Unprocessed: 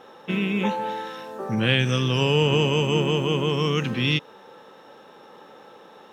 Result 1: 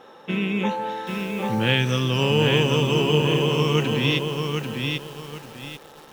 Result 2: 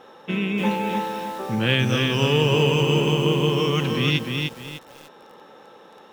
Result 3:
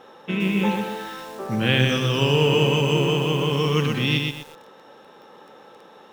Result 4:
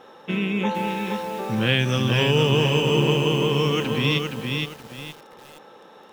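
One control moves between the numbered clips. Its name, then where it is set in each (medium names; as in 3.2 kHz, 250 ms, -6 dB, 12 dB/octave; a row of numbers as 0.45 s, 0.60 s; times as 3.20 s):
bit-crushed delay, time: 791 ms, 300 ms, 122 ms, 468 ms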